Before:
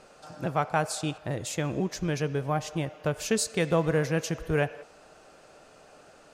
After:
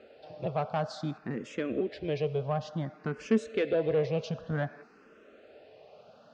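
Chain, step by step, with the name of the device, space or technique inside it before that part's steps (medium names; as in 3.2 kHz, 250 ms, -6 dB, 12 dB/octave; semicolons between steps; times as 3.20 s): barber-pole phaser into a guitar amplifier (barber-pole phaser +0.55 Hz; saturation -22.5 dBFS, distortion -15 dB; cabinet simulation 76–4500 Hz, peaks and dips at 230 Hz +10 dB, 430 Hz +6 dB, 610 Hz +4 dB, 920 Hz -4 dB); trim -1.5 dB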